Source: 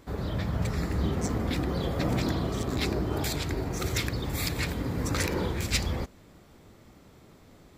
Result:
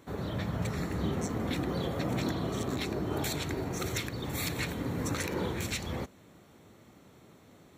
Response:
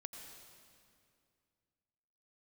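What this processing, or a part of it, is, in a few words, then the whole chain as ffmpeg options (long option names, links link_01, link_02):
PA system with an anti-feedback notch: -af "highpass=100,asuperstop=centerf=4900:order=4:qfactor=7.5,alimiter=limit=-20dB:level=0:latency=1:release=207,volume=-1.5dB"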